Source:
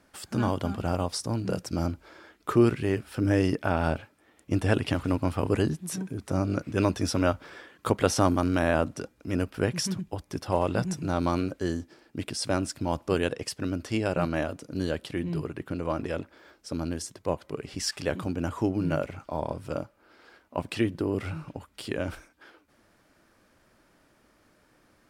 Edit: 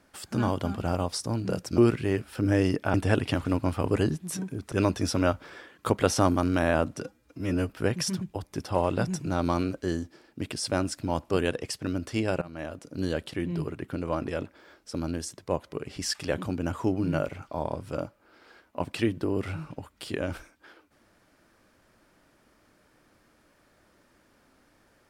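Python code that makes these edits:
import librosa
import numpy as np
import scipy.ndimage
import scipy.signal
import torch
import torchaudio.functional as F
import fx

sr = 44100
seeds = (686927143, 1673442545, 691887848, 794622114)

y = fx.edit(x, sr, fx.cut(start_s=1.78, length_s=0.79),
    fx.cut(start_s=3.73, length_s=0.8),
    fx.cut(start_s=6.31, length_s=0.41),
    fx.stretch_span(start_s=9.02, length_s=0.45, factor=1.5),
    fx.fade_in_from(start_s=14.19, length_s=0.59, floor_db=-22.5), tone=tone)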